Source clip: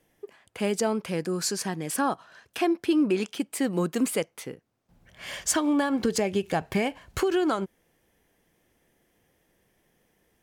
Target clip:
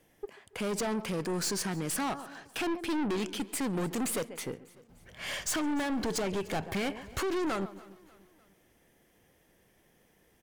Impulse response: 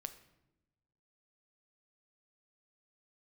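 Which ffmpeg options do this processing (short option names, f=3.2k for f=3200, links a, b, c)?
-filter_complex "[0:a]asplit=2[a][b];[b]adelay=138,lowpass=f=1.9k:p=1,volume=-21dB,asplit=2[c][d];[d]adelay=138,lowpass=f=1.9k:p=1,volume=0.36,asplit=2[e][f];[f]adelay=138,lowpass=f=1.9k:p=1,volume=0.36[g];[c][e][g]amix=inputs=3:normalize=0[h];[a][h]amix=inputs=2:normalize=0,aeval=exprs='(tanh(39.8*val(0)+0.3)-tanh(0.3))/39.8':c=same,asplit=2[i][j];[j]aecho=0:1:297|594|891:0.075|0.0382|0.0195[k];[i][k]amix=inputs=2:normalize=0,volume=3dB"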